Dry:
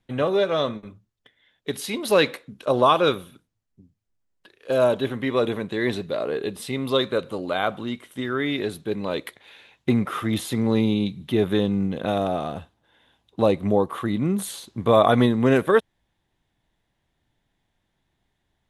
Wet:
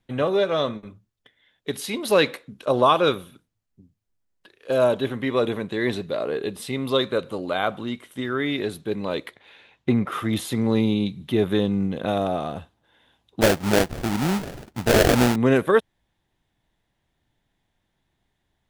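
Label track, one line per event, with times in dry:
9.260000	10.120000	low-pass 3.5 kHz 6 dB/octave
13.410000	15.360000	sample-rate reducer 1.1 kHz, jitter 20%

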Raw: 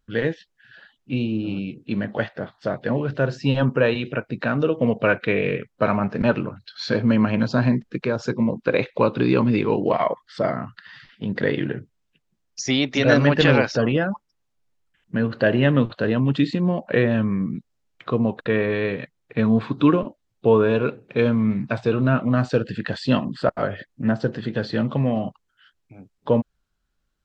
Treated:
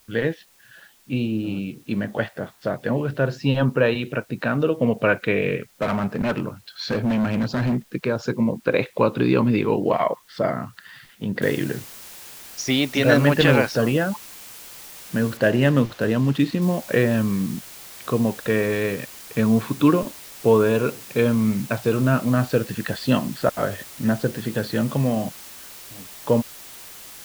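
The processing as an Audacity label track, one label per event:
5.740000	7.930000	hard clipper -18 dBFS
11.420000	11.420000	noise floor step -57 dB -41 dB
15.370000	16.620000	median filter over 5 samples

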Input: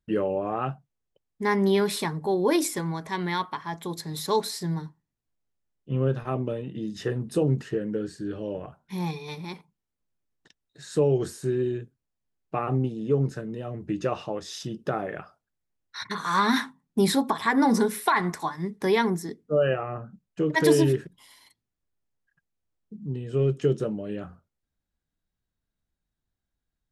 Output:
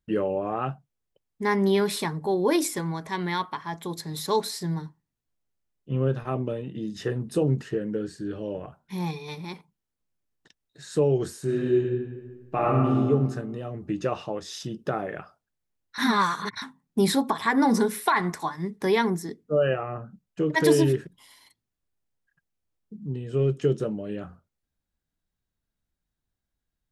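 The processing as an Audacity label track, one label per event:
11.440000	12.980000	reverb throw, RT60 1.5 s, DRR -4 dB
15.980000	16.620000	reverse

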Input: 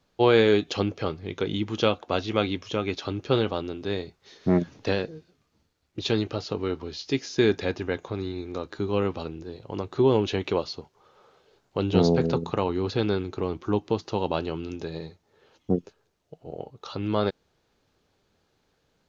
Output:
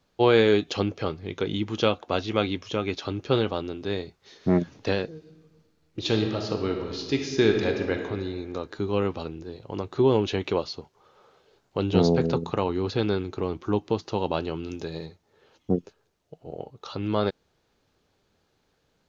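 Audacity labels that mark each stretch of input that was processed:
5.140000	8.000000	reverb throw, RT60 1.6 s, DRR 3.5 dB
14.660000	15.060000	treble shelf 6 kHz +7 dB

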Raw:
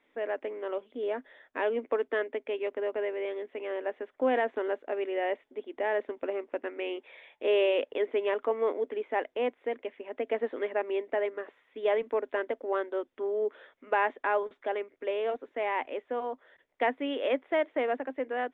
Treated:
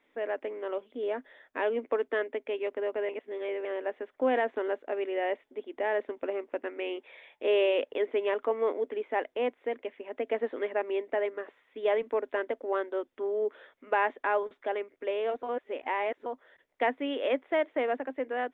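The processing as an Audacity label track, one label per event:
3.090000	3.650000	reverse
15.430000	16.260000	reverse

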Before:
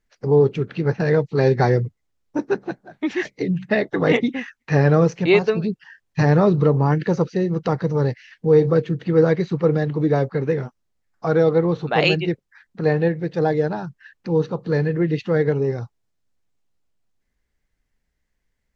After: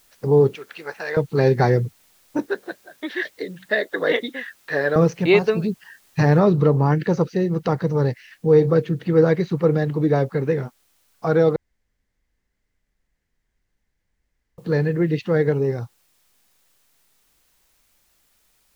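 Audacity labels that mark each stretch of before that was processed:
0.550000	1.170000	high-pass 830 Hz
2.460000	4.960000	cabinet simulation 460–4600 Hz, peaks and dips at 540 Hz +3 dB, 820 Hz -9 dB, 1.2 kHz -4 dB, 1.7 kHz +6 dB, 2.5 kHz -10 dB, 3.7 kHz +7 dB
6.390000	6.390000	noise floor step -58 dB -64 dB
11.560000	14.580000	room tone

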